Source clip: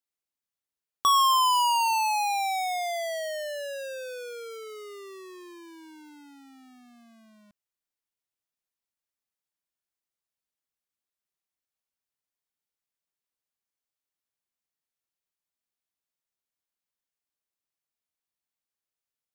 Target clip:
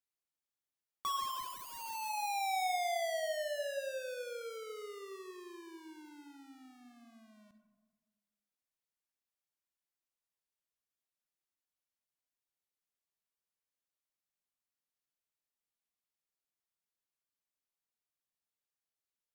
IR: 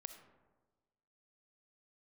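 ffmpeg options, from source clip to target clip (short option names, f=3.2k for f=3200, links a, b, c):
-filter_complex "[0:a]aeval=exprs='0.0376*(abs(mod(val(0)/0.0376+3,4)-2)-1)':c=same[a];[1:a]atrim=start_sample=2205,asetrate=40131,aresample=44100[b];[a][b]afir=irnorm=-1:irlink=0"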